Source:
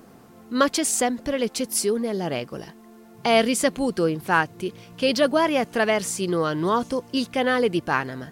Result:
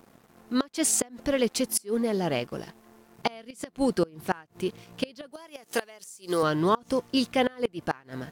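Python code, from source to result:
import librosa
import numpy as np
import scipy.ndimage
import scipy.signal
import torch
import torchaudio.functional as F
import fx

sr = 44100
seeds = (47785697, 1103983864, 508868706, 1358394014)

y = np.sign(x) * np.maximum(np.abs(x) - 10.0 ** (-49.5 / 20.0), 0.0)
y = fx.bass_treble(y, sr, bass_db=-11, treble_db=12, at=(5.32, 6.43))
y = fx.gate_flip(y, sr, shuts_db=-12.0, range_db=-27)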